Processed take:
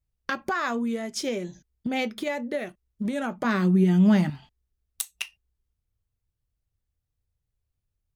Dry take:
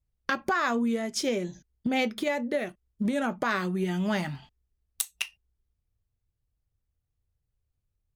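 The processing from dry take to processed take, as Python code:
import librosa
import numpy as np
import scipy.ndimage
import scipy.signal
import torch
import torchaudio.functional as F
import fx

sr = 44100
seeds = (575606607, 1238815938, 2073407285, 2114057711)

y = fx.peak_eq(x, sr, hz=210.0, db=12.5, octaves=1.6, at=(3.44, 4.3))
y = F.gain(torch.from_numpy(y), -1.0).numpy()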